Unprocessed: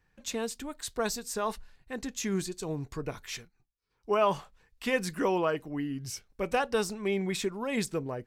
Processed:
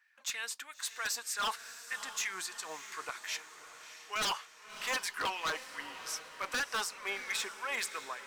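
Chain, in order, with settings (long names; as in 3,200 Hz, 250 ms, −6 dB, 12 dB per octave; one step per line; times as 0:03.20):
auto-filter high-pass sine 3.2 Hz 980–2,000 Hz
wave folding −27 dBFS
feedback delay with all-pass diffusion 630 ms, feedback 55%, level −12 dB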